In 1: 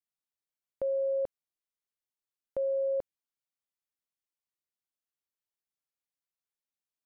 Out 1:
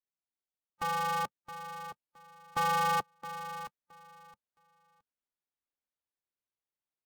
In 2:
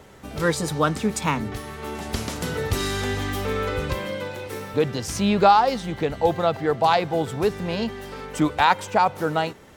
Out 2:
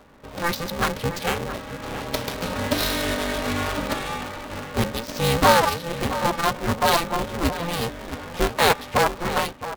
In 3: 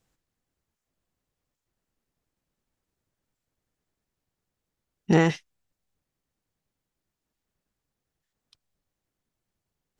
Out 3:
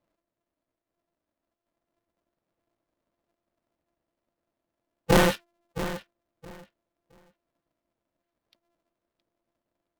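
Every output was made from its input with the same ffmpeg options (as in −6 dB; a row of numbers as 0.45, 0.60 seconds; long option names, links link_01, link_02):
-filter_complex "[0:a]afftfilt=real='real(if(between(b,1,1008),(2*floor((b-1)/24)+1)*24-b,b),0)':imag='imag(if(between(b,1,1008),(2*floor((b-1)/24)+1)*24-b,b),0)*if(between(b,1,1008),-1,1)':win_size=2048:overlap=0.75,lowpass=frequency=5500:width=0.5412,lowpass=frequency=5500:width=1.3066,equalizer=frequency=3900:width=2.4:gain=2.5,adynamicsmooth=sensitivity=6:basefreq=1800,highpass=43,asplit=2[link_01][link_02];[link_02]adelay=668,lowpass=frequency=3000:poles=1,volume=-12dB,asplit=2[link_03][link_04];[link_04]adelay=668,lowpass=frequency=3000:poles=1,volume=0.2,asplit=2[link_05][link_06];[link_06]adelay=668,lowpass=frequency=3000:poles=1,volume=0.2[link_07];[link_01][link_03][link_05][link_07]amix=inputs=4:normalize=0,dynaudnorm=framelen=530:gausssize=7:maxgain=4dB,aemphasis=mode=production:type=50fm,aeval=exprs='val(0)*sgn(sin(2*PI*170*n/s))':channel_layout=same,volume=-2.5dB"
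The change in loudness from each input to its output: −1.5, −0.5, −2.5 LU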